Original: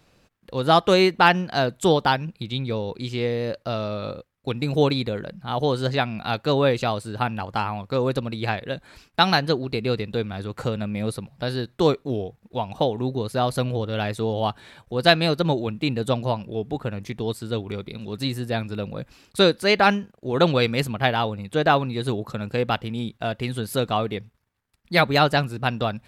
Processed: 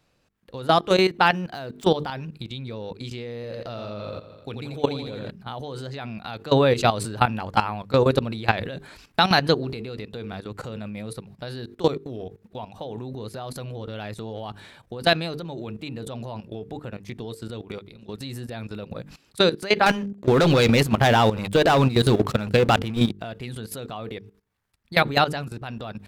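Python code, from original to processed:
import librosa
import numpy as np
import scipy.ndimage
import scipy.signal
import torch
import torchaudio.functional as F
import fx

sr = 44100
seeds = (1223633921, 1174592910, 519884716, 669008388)

y = fx.median_filter(x, sr, points=5, at=(1.32, 1.84))
y = fx.echo_feedback(y, sr, ms=86, feedback_pct=52, wet_db=-6, at=(3.35, 5.31))
y = fx.leveller(y, sr, passes=3, at=(19.86, 23.19))
y = fx.edit(y, sr, fx.clip_gain(start_s=6.52, length_s=3.33, db=6.0), tone=tone)
y = fx.hum_notches(y, sr, base_hz=50, count=9)
y = fx.level_steps(y, sr, step_db=17)
y = fx.transient(y, sr, attack_db=2, sustain_db=6)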